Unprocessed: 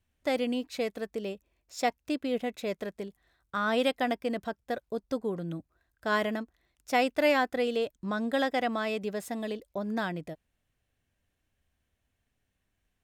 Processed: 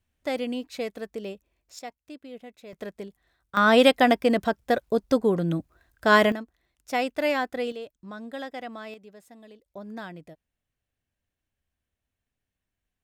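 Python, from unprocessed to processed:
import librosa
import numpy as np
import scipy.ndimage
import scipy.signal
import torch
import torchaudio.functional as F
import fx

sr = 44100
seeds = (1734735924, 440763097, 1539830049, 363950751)

y = fx.gain(x, sr, db=fx.steps((0.0, 0.0), (1.79, -11.5), (2.73, 0.0), (3.57, 10.0), (6.32, -0.5), (7.72, -8.0), (8.94, -15.0), (9.66, -6.5)))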